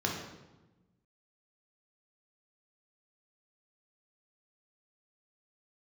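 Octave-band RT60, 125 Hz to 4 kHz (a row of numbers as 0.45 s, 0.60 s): 1.7 s, 1.6 s, 1.2 s, 1.0 s, 0.85 s, 0.80 s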